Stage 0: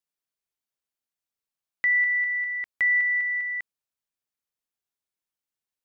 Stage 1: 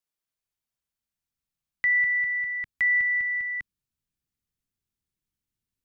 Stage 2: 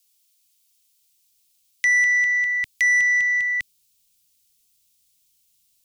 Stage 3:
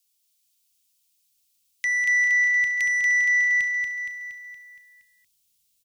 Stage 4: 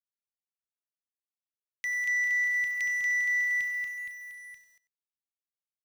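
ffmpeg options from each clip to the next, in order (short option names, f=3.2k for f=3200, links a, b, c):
-filter_complex "[0:a]asubboost=boost=11:cutoff=200,acrossover=split=510[a][b];[a]alimiter=level_in=16.5dB:limit=-24dB:level=0:latency=1:release=123,volume=-16.5dB[c];[c][b]amix=inputs=2:normalize=0"
-af "aexciter=amount=7.2:drive=6.4:freq=2.4k,asoftclip=type=tanh:threshold=-17.5dB,volume=3dB"
-af "aecho=1:1:234|468|702|936|1170|1404|1638:0.631|0.347|0.191|0.105|0.0577|0.0318|0.0175,volume=-6dB"
-filter_complex "[0:a]acrusher=bits=6:mix=0:aa=0.5,asplit=2[a][b];[b]adelay=93.29,volume=-16dB,highshelf=f=4k:g=-2.1[c];[a][c]amix=inputs=2:normalize=0,volume=-7.5dB"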